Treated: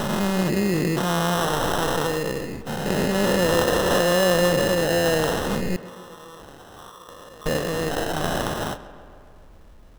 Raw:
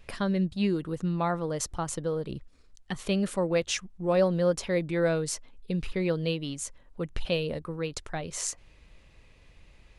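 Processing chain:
every bin's largest magnitude spread in time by 480 ms
0:05.76–0:07.46: pair of resonant band-passes 2,500 Hz, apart 2.1 octaves
sample-rate reduction 2,300 Hz, jitter 0%
on a send: tape delay 134 ms, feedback 72%, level −15 dB, low-pass 3,200 Hz

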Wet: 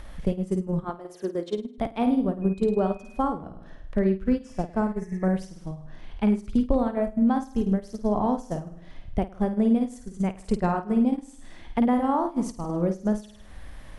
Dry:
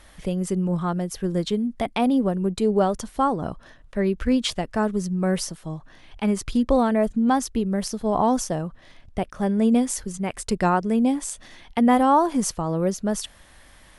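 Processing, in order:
0:00.84–0:01.78: high-pass filter 270 Hz 24 dB per octave
in parallel at −2 dB: upward compression, threshold −24 dBFS
on the sum: low-shelf EQ 380 Hz −2.5 dB
on a send: flutter between parallel walls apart 9 metres, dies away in 0.58 s
0:04.43–0:05.28: on the sum: healed spectral selection 1,700–5,000 Hz both
downward compressor 4 to 1, threshold −31 dBFS, peak gain reduction 19.5 dB
noise gate −30 dBFS, range −16 dB
0:02.41–0:03.18: steady tone 2,500 Hz −54 dBFS
spectral tilt −2.5 dB per octave
level +4.5 dB

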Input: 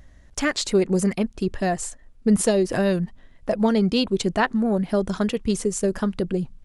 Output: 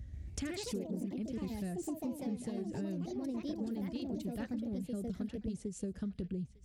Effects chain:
high-pass filter 58 Hz 24 dB per octave
in parallel at −2 dB: speech leveller within 5 dB 0.5 s
on the sum: guitar amp tone stack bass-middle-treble 10-0-1
notch filter 1,000 Hz, Q 15
delay with pitch and tempo change per echo 137 ms, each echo +3 semitones, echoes 3
high-shelf EQ 3,600 Hz −7 dB
downward compressor 6 to 1, threshold −47 dBFS, peak gain reduction 20.5 dB
on a send: feedback echo with a band-pass in the loop 902 ms, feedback 43%, band-pass 2,900 Hz, level −12.5 dB
on the sum: level +10 dB

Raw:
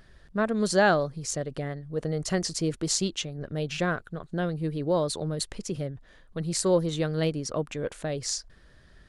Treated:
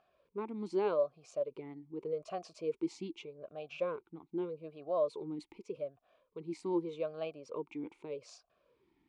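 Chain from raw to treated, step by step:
formant filter swept between two vowels a-u 0.83 Hz
level +1 dB

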